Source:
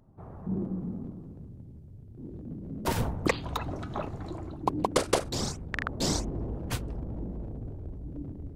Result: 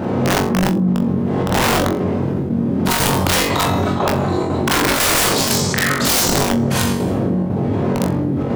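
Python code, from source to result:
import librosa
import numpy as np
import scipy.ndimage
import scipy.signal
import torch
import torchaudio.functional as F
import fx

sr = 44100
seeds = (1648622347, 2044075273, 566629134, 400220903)

p1 = fx.dmg_wind(x, sr, seeds[0], corner_hz=340.0, level_db=-36.0)
p2 = scipy.signal.sosfilt(scipy.signal.butter(4, 100.0, 'highpass', fs=sr, output='sos'), p1)
p3 = 10.0 ** (-24.5 / 20.0) * np.tanh(p2 / 10.0 ** (-24.5 / 20.0))
p4 = p2 + (p3 * 10.0 ** (-9.0 / 20.0))
p5 = fx.rev_schroeder(p4, sr, rt60_s=0.7, comb_ms=30, drr_db=-9.0)
p6 = (np.mod(10.0 ** (13.0 / 20.0) * p5 + 1.0, 2.0) - 1.0) / 10.0 ** (13.0 / 20.0)
p7 = fx.chopper(p6, sr, hz=2.0, depth_pct=65, duty_pct=85)
p8 = p7 + fx.room_flutter(p7, sr, wall_m=3.7, rt60_s=0.23, dry=0)
y = fx.env_flatten(p8, sr, amount_pct=70)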